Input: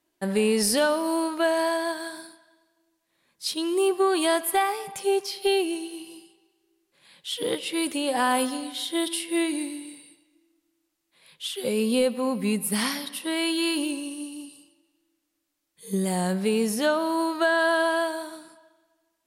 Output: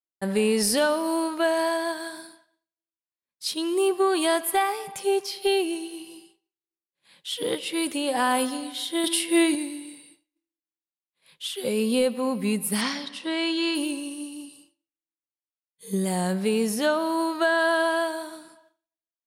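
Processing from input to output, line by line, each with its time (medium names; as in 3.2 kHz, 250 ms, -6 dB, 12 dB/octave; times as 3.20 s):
9.04–9.55 s: gain +5 dB
12.81–13.75 s: low-pass 7.1 kHz 24 dB/octave
whole clip: expander -51 dBFS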